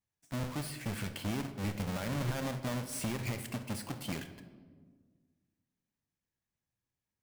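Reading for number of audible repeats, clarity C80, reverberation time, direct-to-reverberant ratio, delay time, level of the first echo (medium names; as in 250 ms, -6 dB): no echo, 13.0 dB, 1.6 s, 9.0 dB, no echo, no echo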